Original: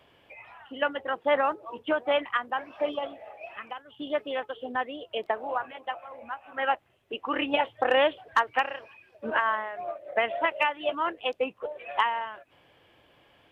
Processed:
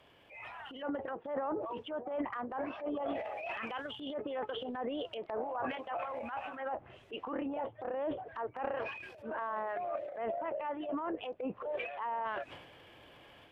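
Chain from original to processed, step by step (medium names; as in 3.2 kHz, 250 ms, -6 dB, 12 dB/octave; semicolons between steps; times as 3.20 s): low-pass that closes with the level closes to 880 Hz, closed at -25.5 dBFS; reverse; compression 8:1, threshold -37 dBFS, peak gain reduction 16.5 dB; reverse; transient shaper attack -7 dB, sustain +10 dB; level rider gain up to 6.5 dB; trim -3 dB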